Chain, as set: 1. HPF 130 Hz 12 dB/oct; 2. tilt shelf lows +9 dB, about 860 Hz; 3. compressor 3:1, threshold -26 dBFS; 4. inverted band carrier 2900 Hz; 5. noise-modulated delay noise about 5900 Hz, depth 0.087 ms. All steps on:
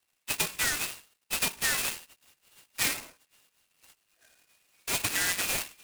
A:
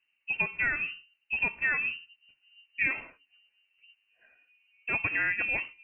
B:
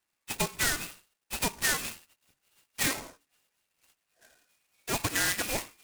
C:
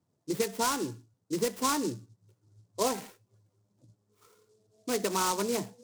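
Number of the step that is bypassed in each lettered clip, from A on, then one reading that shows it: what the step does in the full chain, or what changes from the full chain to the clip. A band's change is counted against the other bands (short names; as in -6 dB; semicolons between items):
5, 4 kHz band -14.5 dB; 2, 4 kHz band -5.0 dB; 4, 2 kHz band -15.0 dB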